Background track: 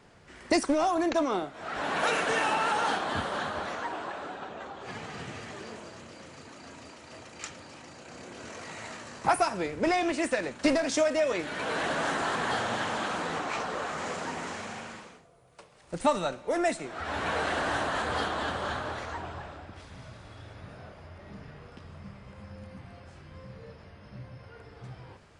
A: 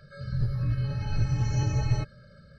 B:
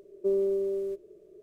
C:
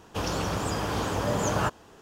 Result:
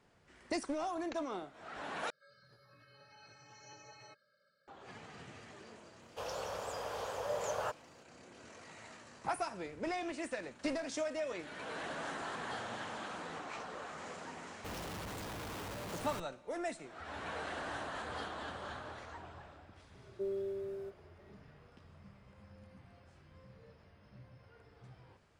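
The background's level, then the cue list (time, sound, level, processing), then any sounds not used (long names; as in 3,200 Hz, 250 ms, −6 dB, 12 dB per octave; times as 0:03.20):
background track −12 dB
0:02.10: overwrite with A −15 dB + high-pass filter 580 Hz
0:06.02: mix in C −12.5 dB + low shelf with overshoot 380 Hz −10.5 dB, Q 3
0:14.50: mix in C −14.5 dB + comparator with hysteresis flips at −39.5 dBFS
0:19.95: mix in B −11.5 dB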